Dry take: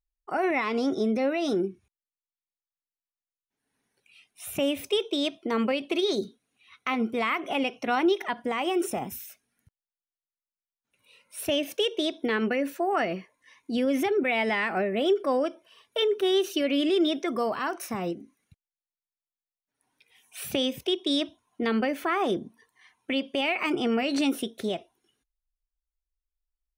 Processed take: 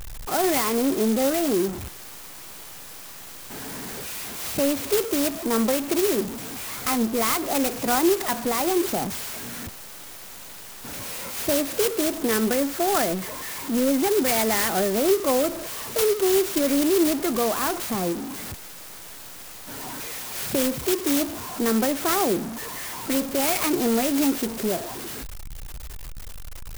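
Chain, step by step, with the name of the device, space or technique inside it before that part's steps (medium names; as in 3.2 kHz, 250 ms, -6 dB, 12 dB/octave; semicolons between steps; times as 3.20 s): early CD player with a faulty converter (jump at every zero crossing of -29.5 dBFS; sampling jitter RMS 0.1 ms); trim +2 dB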